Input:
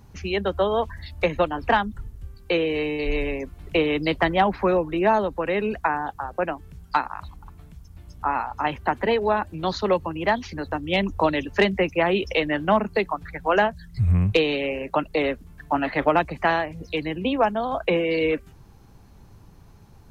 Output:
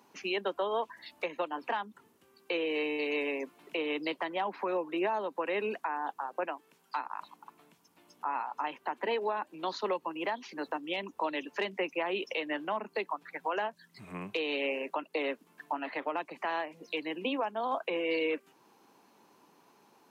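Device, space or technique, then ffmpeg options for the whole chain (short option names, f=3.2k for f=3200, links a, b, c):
laptop speaker: -filter_complex "[0:a]asettb=1/sr,asplit=3[a][b][c];[a]atrim=end=6.474[d];[b]atrim=start=6.47:end=6.98,asetpts=PTS-STARTPTS,afade=t=in:d=0.004:c=qsin,afade=t=out:st=0.506:d=0.004:c=qsin,lowshelf=f=200:g=-12[e];[c]atrim=start=6.976[f];[d][e]acrossfade=d=0.004:c1=hsin:c2=qsin[g];[g][f]acrossfade=d=0.004:c1=qsin:c2=hsin,highpass=f=260:w=0.5412,highpass=f=260:w=1.3066,equalizer=f=980:t=o:w=0.34:g=6,equalizer=f=2.7k:t=o:w=0.47:g=4,alimiter=limit=-17.5dB:level=0:latency=1:release=346,volume=-5dB"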